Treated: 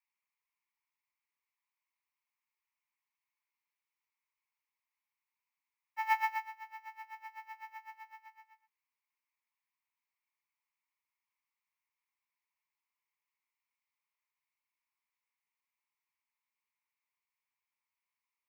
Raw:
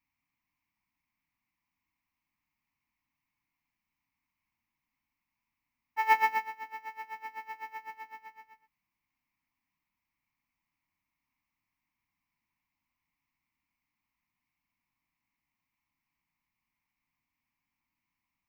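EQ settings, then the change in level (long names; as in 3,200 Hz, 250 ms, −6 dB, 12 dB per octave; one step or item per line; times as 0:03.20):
Butterworth high-pass 800 Hz 96 dB per octave
−6.0 dB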